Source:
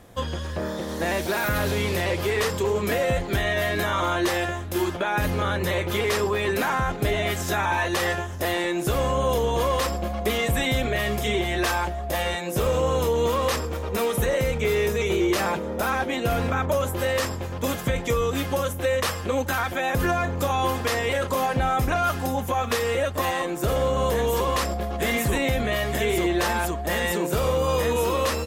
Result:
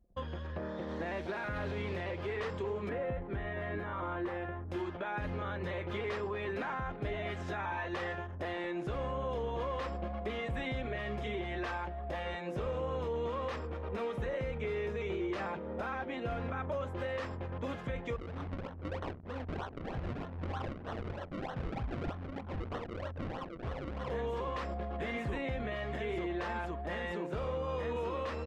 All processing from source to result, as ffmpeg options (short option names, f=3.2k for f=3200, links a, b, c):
-filter_complex "[0:a]asettb=1/sr,asplit=3[a][b][c];[a]atrim=end=2.894[d];[b]atrim=start=2.89:end=4.69,asetpts=PTS-STARTPTS,afade=t=in:d=0.004:c=qsin,afade=t=out:st=1.796:d=0.004:c=qsin,equalizer=f=5.6k:t=o:w=2:g=-15,bandreject=f=650:w=8.6[e];[c]atrim=start=4.686[f];[d][e]acrossfade=d=0.004:c1=hsin:c2=qsin[g];[g][f]acrossfade=d=0.004:c1=qsin:c2=hsin,asettb=1/sr,asplit=3[h][i][j];[h]atrim=end=18.164[k];[i]atrim=start=18.16:end=24.1,asetpts=PTS-STARTPTS,afade=t=in:d=0.004:c=qsin,afade=t=out:st=5.936:d=0.004:c=qsin,equalizer=f=430:w=0.63:g=-8,flanger=delay=18:depth=6.5:speed=1.9,acrusher=samples=36:mix=1:aa=0.000001:lfo=1:lforange=36:lforate=3.2[l];[j]atrim=start=24.096[m];[k][l]acrossfade=d=0.004:c1=hsin:c2=qsin[n];[n][m]acrossfade=d=0.004:c1=qsin:c2=hsin,anlmdn=0.631,lowpass=2.6k,alimiter=limit=-20.5dB:level=0:latency=1:release=336,volume=-8dB"